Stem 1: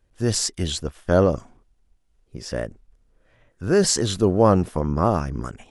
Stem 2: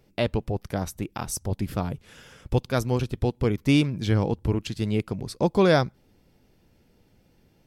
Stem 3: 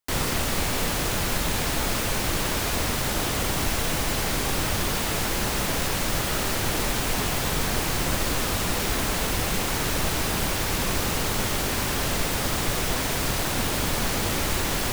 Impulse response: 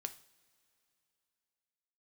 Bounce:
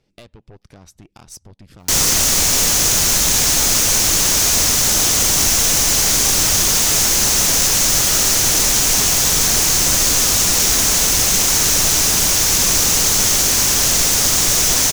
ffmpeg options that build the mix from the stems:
-filter_complex "[1:a]lowpass=5900,alimiter=limit=-18.5dB:level=0:latency=1:release=267,aeval=exprs='(tanh(28.2*val(0)+0.55)-tanh(0.55))/28.2':channel_layout=same,volume=-3.5dB[link_01];[2:a]equalizer=frequency=6200:width_type=o:width=0.64:gain=10.5,adelay=1800,volume=2.5dB[link_02];[link_01]acompressor=threshold=-39dB:ratio=4,volume=0dB[link_03];[link_02][link_03]amix=inputs=2:normalize=0,highshelf=frequency=3500:gain=11"

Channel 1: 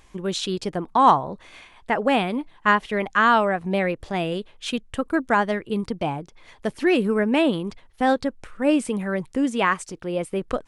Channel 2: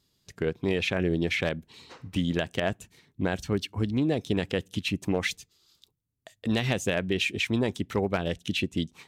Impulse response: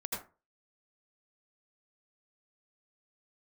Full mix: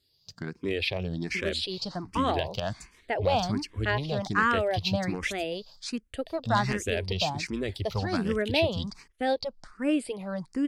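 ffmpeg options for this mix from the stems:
-filter_complex "[0:a]agate=range=-33dB:threshold=-45dB:ratio=3:detection=peak,equalizer=frequency=660:width_type=o:width=0.45:gain=4,adelay=1200,volume=-5.5dB[link_01];[1:a]asubboost=boost=6:cutoff=85,volume=-1.5dB[link_02];[link_01][link_02]amix=inputs=2:normalize=0,equalizer=frequency=4700:width=3:gain=13,asplit=2[link_03][link_04];[link_04]afreqshift=1.3[link_05];[link_03][link_05]amix=inputs=2:normalize=1"

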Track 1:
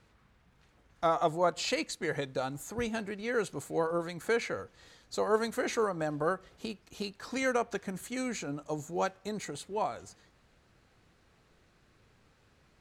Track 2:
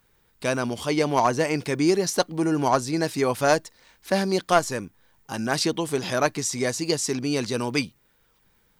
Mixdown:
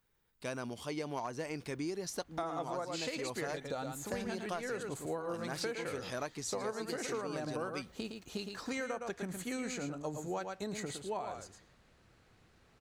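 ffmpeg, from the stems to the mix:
ffmpeg -i stem1.wav -i stem2.wav -filter_complex "[0:a]adelay=1350,volume=-1dB,asplit=2[link_01][link_02];[link_02]volume=-7.5dB[link_03];[1:a]volume=-13dB[link_04];[link_03]aecho=0:1:112:1[link_05];[link_01][link_04][link_05]amix=inputs=3:normalize=0,acompressor=threshold=-34dB:ratio=12" out.wav

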